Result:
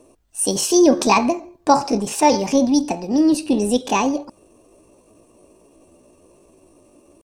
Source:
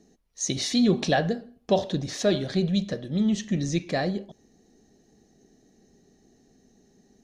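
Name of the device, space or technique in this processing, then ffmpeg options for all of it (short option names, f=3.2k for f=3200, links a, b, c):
chipmunk voice: -af "asetrate=64194,aresample=44100,atempo=0.686977,volume=8dB"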